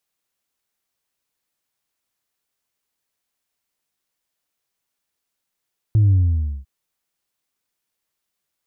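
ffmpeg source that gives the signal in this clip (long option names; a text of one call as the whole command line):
ffmpeg -f lavfi -i "aevalsrc='0.266*clip((0.7-t)/0.54,0,1)*tanh(1.12*sin(2*PI*110*0.7/log(65/110)*(exp(log(65/110)*t/0.7)-1)))/tanh(1.12)':duration=0.7:sample_rate=44100" out.wav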